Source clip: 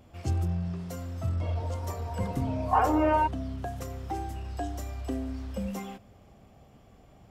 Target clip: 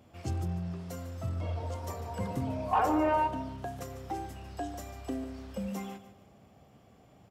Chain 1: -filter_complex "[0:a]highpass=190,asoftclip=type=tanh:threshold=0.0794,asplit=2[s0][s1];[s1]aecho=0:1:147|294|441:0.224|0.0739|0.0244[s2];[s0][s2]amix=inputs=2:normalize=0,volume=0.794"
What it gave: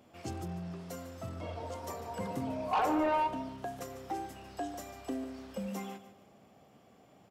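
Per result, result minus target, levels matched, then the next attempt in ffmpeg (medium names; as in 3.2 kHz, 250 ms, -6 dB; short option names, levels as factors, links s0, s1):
saturation: distortion +11 dB; 125 Hz band -5.5 dB
-filter_complex "[0:a]highpass=190,asoftclip=type=tanh:threshold=0.188,asplit=2[s0][s1];[s1]aecho=0:1:147|294|441:0.224|0.0739|0.0244[s2];[s0][s2]amix=inputs=2:normalize=0,volume=0.794"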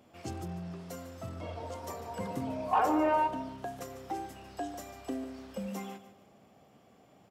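125 Hz band -7.0 dB
-filter_complex "[0:a]highpass=91,asoftclip=type=tanh:threshold=0.188,asplit=2[s0][s1];[s1]aecho=0:1:147|294|441:0.224|0.0739|0.0244[s2];[s0][s2]amix=inputs=2:normalize=0,volume=0.794"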